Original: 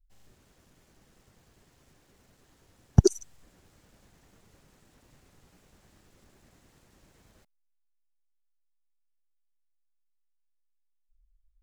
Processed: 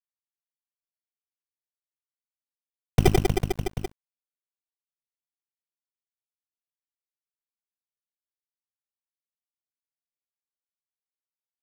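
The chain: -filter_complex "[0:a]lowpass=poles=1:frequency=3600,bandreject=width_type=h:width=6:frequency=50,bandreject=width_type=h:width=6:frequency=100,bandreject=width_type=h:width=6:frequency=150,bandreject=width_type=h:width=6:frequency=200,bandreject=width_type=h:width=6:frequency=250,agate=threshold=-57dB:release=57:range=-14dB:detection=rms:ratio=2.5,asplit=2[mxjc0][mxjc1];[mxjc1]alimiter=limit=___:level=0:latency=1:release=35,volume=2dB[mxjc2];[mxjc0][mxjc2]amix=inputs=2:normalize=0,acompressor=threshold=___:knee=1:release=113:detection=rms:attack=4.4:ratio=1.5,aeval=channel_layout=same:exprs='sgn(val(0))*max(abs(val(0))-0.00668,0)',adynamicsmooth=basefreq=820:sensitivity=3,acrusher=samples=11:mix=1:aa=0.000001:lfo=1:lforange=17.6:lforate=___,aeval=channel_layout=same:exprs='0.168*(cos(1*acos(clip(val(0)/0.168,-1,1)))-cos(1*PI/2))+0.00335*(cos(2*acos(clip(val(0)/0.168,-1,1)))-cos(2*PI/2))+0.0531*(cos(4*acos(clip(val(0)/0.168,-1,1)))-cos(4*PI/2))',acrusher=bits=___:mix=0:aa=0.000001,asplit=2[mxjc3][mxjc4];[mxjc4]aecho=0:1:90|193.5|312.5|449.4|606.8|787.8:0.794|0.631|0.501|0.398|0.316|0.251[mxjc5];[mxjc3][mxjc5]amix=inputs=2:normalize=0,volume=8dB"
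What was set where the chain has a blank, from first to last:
-12dB, -50dB, 0.36, 7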